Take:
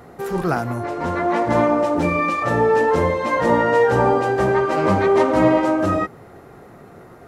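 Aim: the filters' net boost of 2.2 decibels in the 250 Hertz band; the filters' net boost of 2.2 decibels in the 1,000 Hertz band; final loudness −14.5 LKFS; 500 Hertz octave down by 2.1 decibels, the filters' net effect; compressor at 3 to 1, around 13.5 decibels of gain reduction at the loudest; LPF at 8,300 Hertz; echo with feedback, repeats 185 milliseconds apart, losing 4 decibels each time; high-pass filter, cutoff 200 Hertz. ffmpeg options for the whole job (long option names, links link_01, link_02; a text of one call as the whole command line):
ffmpeg -i in.wav -af "highpass=200,lowpass=8300,equalizer=frequency=250:width_type=o:gain=6.5,equalizer=frequency=500:width_type=o:gain=-5.5,equalizer=frequency=1000:width_type=o:gain=4,acompressor=threshold=-30dB:ratio=3,aecho=1:1:185|370|555|740|925|1110|1295|1480|1665:0.631|0.398|0.25|0.158|0.0994|0.0626|0.0394|0.0249|0.0157,volume=13dB" out.wav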